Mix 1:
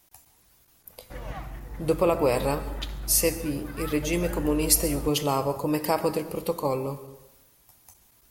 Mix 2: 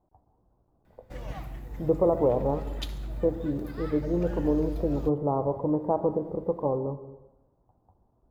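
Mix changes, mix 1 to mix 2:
speech: add inverse Chebyshev low-pass filter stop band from 2,300 Hz, stop band 50 dB
background: add parametric band 1,400 Hz −5.5 dB 1.7 octaves

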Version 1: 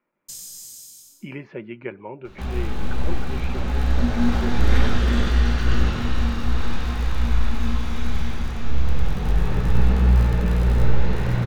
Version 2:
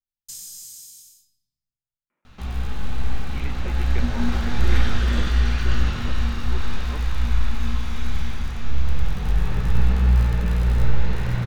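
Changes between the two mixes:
speech: entry +2.10 s
master: add parametric band 380 Hz −6 dB 2.5 octaves

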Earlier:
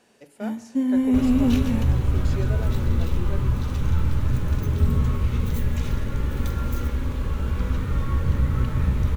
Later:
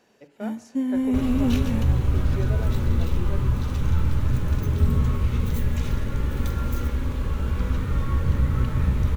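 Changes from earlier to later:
speech: add high-frequency loss of the air 190 metres
first sound: send −8.5 dB

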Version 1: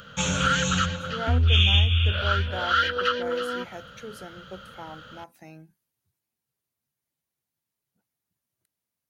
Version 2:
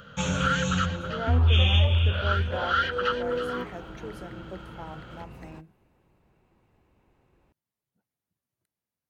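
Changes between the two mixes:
second sound: unmuted
master: add high-shelf EQ 2,200 Hz −8 dB

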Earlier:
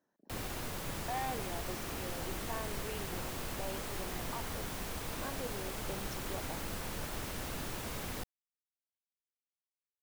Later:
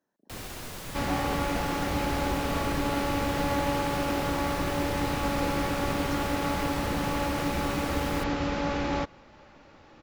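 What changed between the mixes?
first sound: add parametric band 5,000 Hz +3 dB 2.4 octaves
second sound: unmuted

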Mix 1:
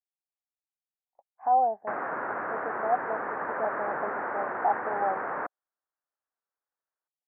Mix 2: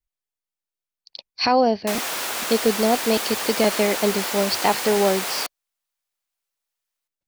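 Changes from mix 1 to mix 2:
speech: remove resonant band-pass 770 Hz, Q 7.2
master: remove Butterworth low-pass 1,700 Hz 48 dB per octave

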